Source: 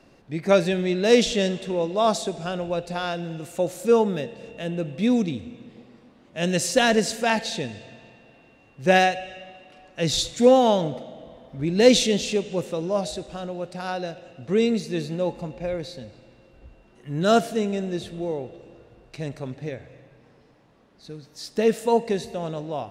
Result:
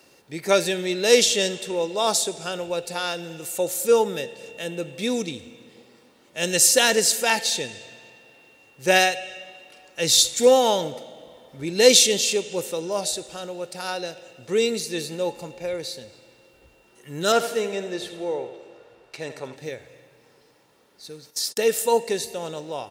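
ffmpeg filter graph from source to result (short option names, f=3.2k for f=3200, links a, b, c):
-filter_complex "[0:a]asettb=1/sr,asplit=3[a][b][c];[a]atrim=end=17.324[d];[b]atrim=start=17.32:end=19.56,asetpts=PTS-STARTPTS,afade=t=in:d=0.004:c=qsin,afade=t=out:st=2.236:d=0.004:c=qsin,asplit=2[e][f];[f]highpass=f=720:p=1,volume=10dB,asoftclip=type=tanh:threshold=-7dB[g];[e][g]amix=inputs=2:normalize=0,lowpass=f=1.7k:p=1,volume=-6dB,aecho=1:1:81|162|243|324|405:0.251|0.113|0.0509|0.0229|0.0103,atrim=end_sample=98784[h];[c]atrim=start=19.556[i];[d][h]acrossfade=d=0.004:c1=hsin:c2=qsin[j];[j][i]acrossfade=d=0.004:c1=qsin:c2=hsin,asettb=1/sr,asplit=3[k][l][m];[k]atrim=end=21.304[n];[l]atrim=start=21.3:end=21.82,asetpts=PTS-STARTPTS,afade=t=in:d=0.004:c=qsin,afade=t=out:st=0.516:d=0.004:c=qsin,agate=range=-53dB:threshold=-49dB:ratio=16:release=100:detection=peak,lowshelf=f=170:g=-6,acompressor=mode=upward:threshold=-28dB:ratio=2.5:attack=3.2:release=140:knee=2.83:detection=peak[o];[m]atrim=start=21.816[p];[n][o]acrossfade=d=0.004:c1=hsin:c2=qsin[q];[q][p]acrossfade=d=0.004:c1=qsin:c2=hsin,highpass=f=250:p=1,aemphasis=mode=production:type=75fm,aecho=1:1:2.2:0.33"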